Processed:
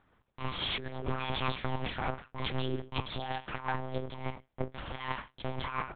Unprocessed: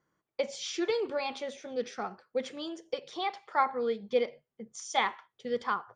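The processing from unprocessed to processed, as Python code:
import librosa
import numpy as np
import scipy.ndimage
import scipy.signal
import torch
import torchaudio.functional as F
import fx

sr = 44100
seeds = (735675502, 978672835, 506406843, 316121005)

y = fx.lower_of_two(x, sr, delay_ms=2.8)
y = fx.over_compress(y, sr, threshold_db=-41.0, ratio=-1.0)
y = fx.lpc_monotone(y, sr, seeds[0], pitch_hz=130.0, order=8)
y = y * 10.0 ** (6.5 / 20.0)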